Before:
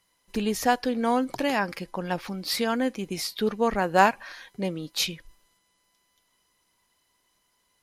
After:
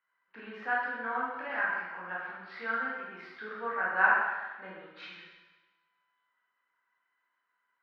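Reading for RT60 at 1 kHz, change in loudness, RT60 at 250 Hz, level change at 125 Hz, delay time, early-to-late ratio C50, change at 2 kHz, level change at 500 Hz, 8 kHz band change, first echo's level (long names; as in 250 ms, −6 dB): 1.2 s, −5.0 dB, 1.2 s, below −20 dB, no echo audible, −0.5 dB, +2.5 dB, −14.0 dB, below −40 dB, no echo audible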